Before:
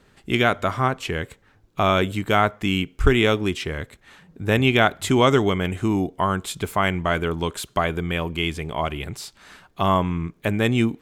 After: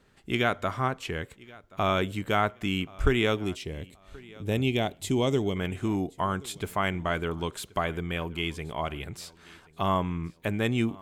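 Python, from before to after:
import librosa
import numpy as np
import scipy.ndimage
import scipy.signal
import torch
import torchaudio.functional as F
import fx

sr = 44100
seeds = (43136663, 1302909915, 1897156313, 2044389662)

y = fx.peak_eq(x, sr, hz=1400.0, db=-15.0, octaves=1.1, at=(3.44, 5.56))
y = fx.echo_feedback(y, sr, ms=1078, feedback_pct=29, wet_db=-23)
y = y * 10.0 ** (-6.5 / 20.0)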